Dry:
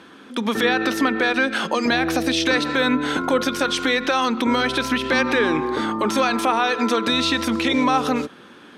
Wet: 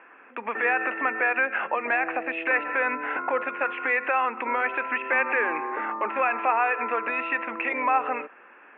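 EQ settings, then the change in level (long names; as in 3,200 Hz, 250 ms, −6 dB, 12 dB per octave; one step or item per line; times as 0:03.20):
high-pass filter 670 Hz 12 dB per octave
Chebyshev low-pass with heavy ripple 2,700 Hz, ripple 3 dB
0.0 dB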